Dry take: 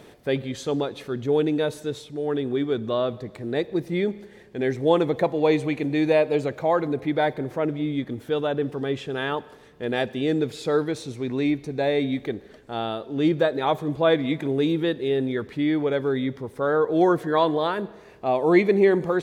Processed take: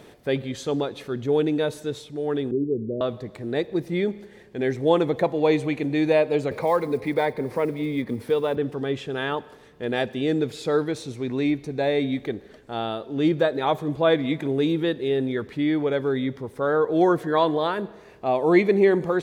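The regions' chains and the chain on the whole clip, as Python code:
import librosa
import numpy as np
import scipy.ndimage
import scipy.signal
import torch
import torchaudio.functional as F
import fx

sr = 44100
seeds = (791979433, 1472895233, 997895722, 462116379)

y = fx.chain(x, sr, fx.steep_lowpass(hz=500.0, slope=48),
    fx.band_squash(depth_pct=40), at=(2.51, 3.01))
y = fx.chain(y, sr, fx.block_float(bits=7),
    fx.ripple_eq(per_octave=0.9, db=7),
    fx.band_squash(depth_pct=40), at=(6.51, 8.57))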